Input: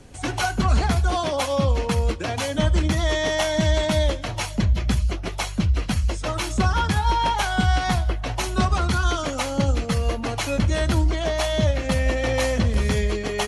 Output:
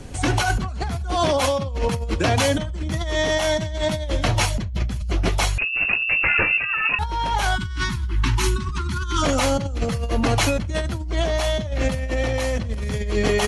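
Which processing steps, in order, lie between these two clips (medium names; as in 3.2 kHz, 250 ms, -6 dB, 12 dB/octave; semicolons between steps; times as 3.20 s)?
5.58–6.99 s: frequency inversion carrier 2.7 kHz; bass shelf 200 Hz +3.5 dB; compressor with a negative ratio -25 dBFS, ratio -1; 7.55–9.22 s: spectral selection erased 400–850 Hz; trim +2.5 dB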